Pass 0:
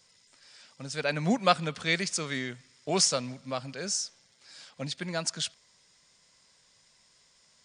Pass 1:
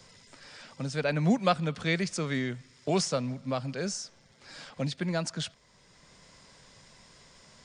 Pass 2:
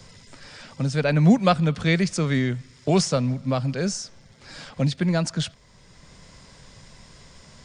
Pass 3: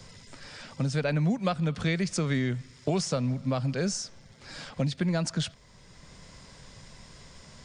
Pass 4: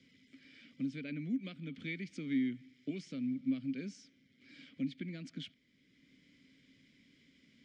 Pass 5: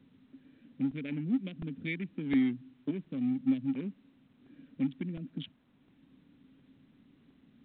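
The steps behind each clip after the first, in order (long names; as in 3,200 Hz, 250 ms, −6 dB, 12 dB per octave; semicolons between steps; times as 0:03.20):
spectral tilt −2 dB per octave; multiband upward and downward compressor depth 40%
low-shelf EQ 160 Hz +10.5 dB; level +5 dB
downward compressor 6 to 1, threshold −22 dBFS, peak gain reduction 11 dB; level −1.5 dB
formant filter i
adaptive Wiener filter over 41 samples; regular buffer underruns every 0.71 s, samples 128, repeat, from 0:00.91; level +6 dB; A-law companding 64 kbit/s 8,000 Hz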